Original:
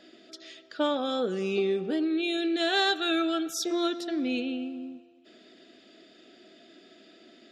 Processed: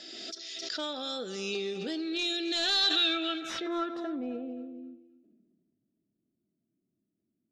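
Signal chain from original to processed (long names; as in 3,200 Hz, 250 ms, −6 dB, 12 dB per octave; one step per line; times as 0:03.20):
source passing by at 0:03.08, 7 m/s, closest 7.5 metres
first-order pre-emphasis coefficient 0.8
in parallel at +2.5 dB: speech leveller within 4 dB 0.5 s
on the sum: gain into a clipping stage and back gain 27.5 dB
low-pass filter sweep 5,700 Hz → 130 Hz, 0:02.64–0:05.79
on a send: feedback echo with a high-pass in the loop 263 ms, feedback 28%, high-pass 740 Hz, level −14.5 dB
on the sum: background raised ahead of every attack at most 26 dB per second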